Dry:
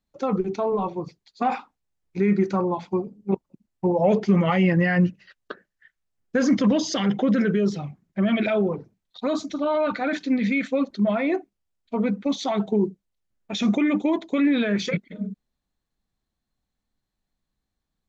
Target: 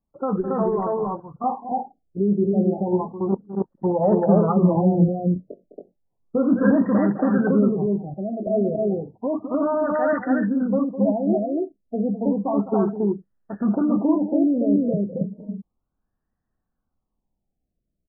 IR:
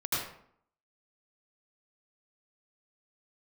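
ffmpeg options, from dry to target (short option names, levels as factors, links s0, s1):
-filter_complex "[0:a]asettb=1/sr,asplit=3[s0][s1][s2];[s0]atrim=end=0.924[s3];[s1]atrim=start=0.92:end=1.44,asetpts=PTS-STARTPTS,afade=t=in:d=0.004:c=qsin,afade=t=out:st=0.516:d=0.004:c=qsin,equalizer=f=370:t=o:w=1.6:g=-14.5[s4];[s2]atrim=start=1.436[s5];[s3][s4]acrossfade=d=0.004:c1=hsin:c2=qsin[s6];[s6][s5]acrossfade=d=0.004:c1=qsin:c2=hsin,asettb=1/sr,asplit=3[s7][s8][s9];[s7]atrim=end=5.064[s10];[s8]atrim=start=5.06:end=6.63,asetpts=PTS-STARTPTS,afade=t=in:d=0.004:c=qsin,afade=t=out:st=1.566:d=0.004:c=qsin,asplit=2[s11][s12];[s12]adelay=22,volume=0.531[s13];[s11][s13]amix=inputs=2:normalize=0,atrim=end_sample=69237[s14];[s9]atrim=start=6.626[s15];[s10][s14]acrossfade=d=0.004:c1=hsin:c2=qsin[s16];[s16][s15]acrossfade=d=0.004:c1=qsin:c2=hsin,asettb=1/sr,asplit=3[s17][s18][s19];[s17]atrim=end=7.864[s20];[s18]atrim=start=7.86:end=8.47,asetpts=PTS-STARTPTS,afade=t=in:d=0.004:c=qsin,afade=t=out:st=0.606:d=0.004:c=qsin,aemphasis=mode=production:type=riaa[s21];[s19]atrim=start=8.466[s22];[s20][s21]acrossfade=d=0.004:c1=hsin:c2=qsin[s23];[s23][s22]acrossfade=d=0.004:c1=qsin:c2=hsin,aecho=1:1:207|277:0.251|0.891,afftfilt=real='re*lt(b*sr/1024,700*pow(2000/700,0.5+0.5*sin(2*PI*0.32*pts/sr)))':imag='im*lt(b*sr/1024,700*pow(2000/700,0.5+0.5*sin(2*PI*0.32*pts/sr)))':win_size=1024:overlap=0.75"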